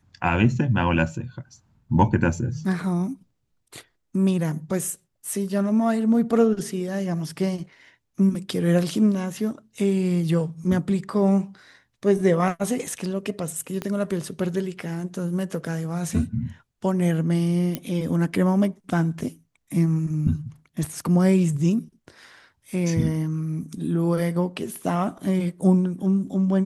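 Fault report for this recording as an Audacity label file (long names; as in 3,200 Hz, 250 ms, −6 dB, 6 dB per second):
13.820000	13.820000	click −15 dBFS
17.750000	17.750000	click −12 dBFS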